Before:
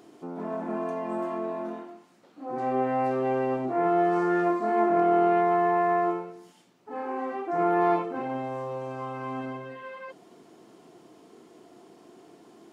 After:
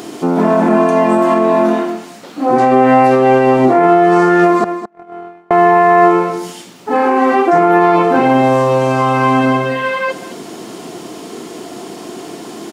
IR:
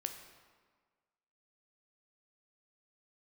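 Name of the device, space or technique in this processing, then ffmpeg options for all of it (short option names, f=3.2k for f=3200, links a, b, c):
mastering chain: -filter_complex "[0:a]asettb=1/sr,asplit=3[a][b][c];[a]atrim=end=4.644[d];[b]atrim=start=4.64:end=5.51,asetpts=PTS-STARTPTS,afade=t=in:d=0.004:c=qsin,afade=t=out:st=0.866:d=0.004:c=qsin,agate=range=-54dB:threshold=-16dB:ratio=16:detection=peak[e];[c]atrim=start=5.506[f];[d][e]acrossfade=d=0.004:c1=hsin:c2=qsin[g];[g][f]acrossfade=d=0.004:c1=qsin:c2=hsin,equalizer=f=210:t=o:w=0.77:g=2.5,highshelf=f=2.1k:g=7.5,aecho=1:1:213:0.141,acompressor=threshold=-29dB:ratio=2.5,alimiter=level_in=23dB:limit=-1dB:release=50:level=0:latency=1,volume=-1dB"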